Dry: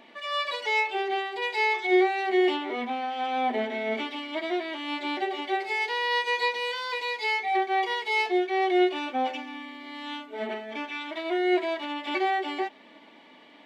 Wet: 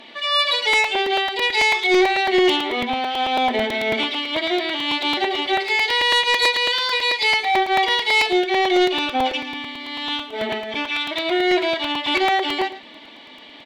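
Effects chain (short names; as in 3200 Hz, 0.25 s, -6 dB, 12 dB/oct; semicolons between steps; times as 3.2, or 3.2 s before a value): bell 3800 Hz +10 dB 1.1 oct; sine folder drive 3 dB, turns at -11 dBFS; echo 0.112 s -14.5 dB; crackling interface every 0.11 s, samples 128, repeat, from 0.73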